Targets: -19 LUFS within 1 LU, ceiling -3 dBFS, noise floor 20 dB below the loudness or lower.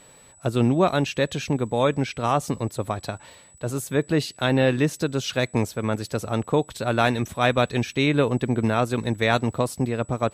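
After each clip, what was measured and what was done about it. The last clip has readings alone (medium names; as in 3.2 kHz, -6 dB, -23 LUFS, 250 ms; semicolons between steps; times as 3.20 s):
tick rate 23 per s; steady tone 7.9 kHz; tone level -51 dBFS; loudness -24.0 LUFS; peak level -5.5 dBFS; loudness target -19.0 LUFS
-> de-click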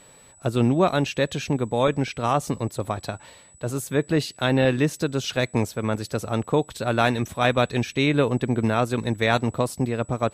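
tick rate 0 per s; steady tone 7.9 kHz; tone level -51 dBFS
-> band-stop 7.9 kHz, Q 30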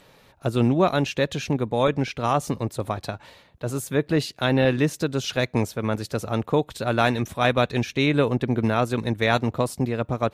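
steady tone not found; loudness -24.0 LUFS; peak level -5.5 dBFS; loudness target -19.0 LUFS
-> trim +5 dB; peak limiter -3 dBFS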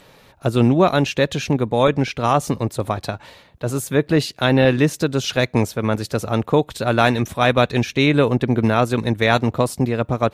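loudness -19.0 LUFS; peak level -3.0 dBFS; noise floor -51 dBFS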